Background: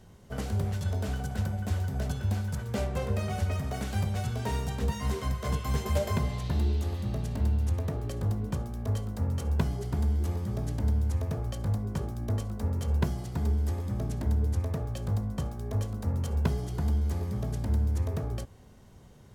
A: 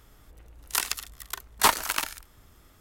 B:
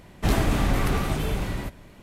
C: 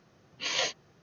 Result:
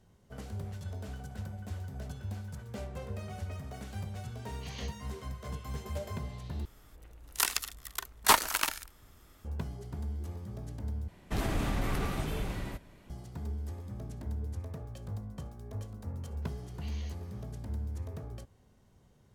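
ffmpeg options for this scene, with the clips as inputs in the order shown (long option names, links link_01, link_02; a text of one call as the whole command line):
ffmpeg -i bed.wav -i cue0.wav -i cue1.wav -i cue2.wav -filter_complex "[3:a]asplit=2[link_01][link_02];[0:a]volume=-10dB[link_03];[2:a]alimiter=limit=-13.5dB:level=0:latency=1:release=45[link_04];[link_02]acompressor=threshold=-53dB:ratio=6:attack=3.2:release=140:knee=1:detection=peak[link_05];[link_03]asplit=3[link_06][link_07][link_08];[link_06]atrim=end=6.654[link_09];[1:a]atrim=end=2.8,asetpts=PTS-STARTPTS,volume=-2dB[link_10];[link_07]atrim=start=9.446:end=11.084[link_11];[link_04]atrim=end=2.02,asetpts=PTS-STARTPTS,volume=-8dB[link_12];[link_08]atrim=start=13.096[link_13];[link_01]atrim=end=1.02,asetpts=PTS-STARTPTS,volume=-17dB,afade=type=in:duration=0.004:curve=hsin,afade=type=out:start_time=1.016:duration=0.004:curve=hsin,adelay=4200[link_14];[link_05]atrim=end=1.02,asetpts=PTS-STARTPTS,afade=type=in:duration=0.004:curve=hsin,afade=type=out:start_time=1.016:duration=0.004:curve=hsin,adelay=16420[link_15];[link_09][link_10]acrossfade=duration=0.004:curve1=hsin:curve2=hsin[link_16];[link_16][link_11]acrossfade=duration=0.004:curve1=hsin:curve2=hsin[link_17];[link_17][link_12]acrossfade=duration=0.004:curve1=hsin:curve2=hsin[link_18];[link_18][link_13]acrossfade=duration=0.004:curve1=hsin:curve2=hsin[link_19];[link_19][link_14][link_15]amix=inputs=3:normalize=0" out.wav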